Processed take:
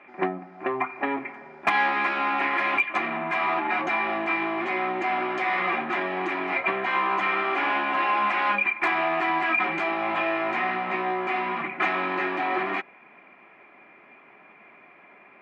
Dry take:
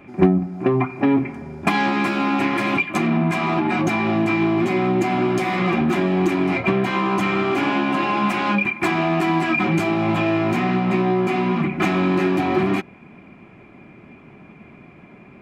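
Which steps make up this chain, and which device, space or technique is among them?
megaphone (band-pass 690–2600 Hz; peaking EQ 1.9 kHz +5.5 dB 0.24 oct; hard clipper -13 dBFS, distortion -37 dB); bass shelf 110 Hz +5.5 dB

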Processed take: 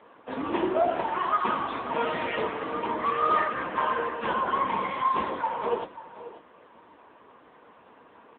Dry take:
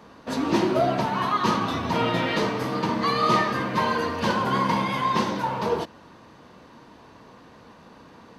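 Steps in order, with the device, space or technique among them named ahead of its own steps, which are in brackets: satellite phone (band-pass 350–3200 Hz; delay 538 ms -14.5 dB; AMR-NB 6.7 kbps 8 kHz)

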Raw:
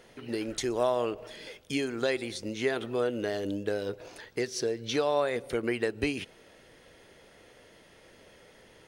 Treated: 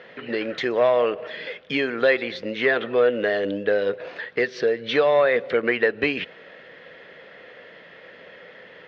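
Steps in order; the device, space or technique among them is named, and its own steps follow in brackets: overdrive pedal into a guitar cabinet (overdrive pedal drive 11 dB, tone 2.7 kHz, clips at -14 dBFS; cabinet simulation 95–3900 Hz, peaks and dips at 110 Hz -4 dB, 170 Hz +6 dB, 340 Hz -4 dB, 510 Hz +5 dB, 870 Hz -5 dB, 1.8 kHz +6 dB); trim +6 dB

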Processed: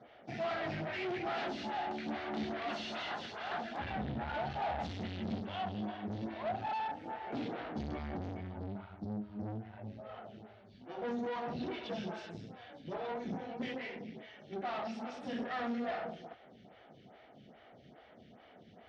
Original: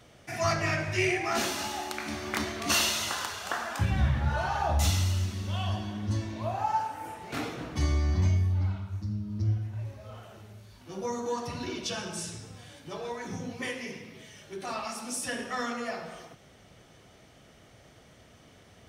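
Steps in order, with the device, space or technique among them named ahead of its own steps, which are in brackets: 4.99–5.40 s: ten-band graphic EQ 125 Hz +10 dB, 250 Hz +9 dB, 500 Hz +4 dB, 1 kHz -11 dB, 2 kHz +6 dB, 4 kHz +5 dB; vibe pedal into a guitar amplifier (lamp-driven phase shifter 2.4 Hz; valve stage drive 40 dB, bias 0.7; cabinet simulation 90–3700 Hz, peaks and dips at 99 Hz -6 dB, 220 Hz +5 dB, 740 Hz +6 dB, 1.1 kHz -5 dB, 2.5 kHz -3 dB); trim +4.5 dB

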